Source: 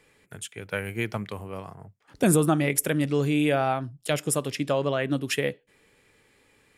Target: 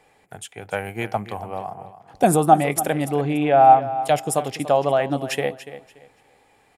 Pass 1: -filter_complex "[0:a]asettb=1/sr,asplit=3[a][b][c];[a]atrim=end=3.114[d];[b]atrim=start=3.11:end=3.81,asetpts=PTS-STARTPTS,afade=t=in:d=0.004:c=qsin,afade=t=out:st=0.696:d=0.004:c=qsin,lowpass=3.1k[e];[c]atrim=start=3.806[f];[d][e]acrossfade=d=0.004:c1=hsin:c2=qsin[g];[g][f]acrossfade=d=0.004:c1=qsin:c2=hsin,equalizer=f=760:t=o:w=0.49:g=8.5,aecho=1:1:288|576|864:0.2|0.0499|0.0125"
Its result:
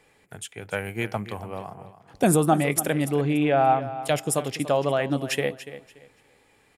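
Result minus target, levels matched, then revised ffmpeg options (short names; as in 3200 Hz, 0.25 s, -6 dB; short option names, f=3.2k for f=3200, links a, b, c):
1000 Hz band -4.5 dB
-filter_complex "[0:a]asettb=1/sr,asplit=3[a][b][c];[a]atrim=end=3.114[d];[b]atrim=start=3.11:end=3.81,asetpts=PTS-STARTPTS,afade=t=in:d=0.004:c=qsin,afade=t=out:st=0.696:d=0.004:c=qsin,lowpass=3.1k[e];[c]atrim=start=3.806[f];[d][e]acrossfade=d=0.004:c1=hsin:c2=qsin[g];[g][f]acrossfade=d=0.004:c1=qsin:c2=hsin,equalizer=f=760:t=o:w=0.49:g=19,aecho=1:1:288|576|864:0.2|0.0499|0.0125"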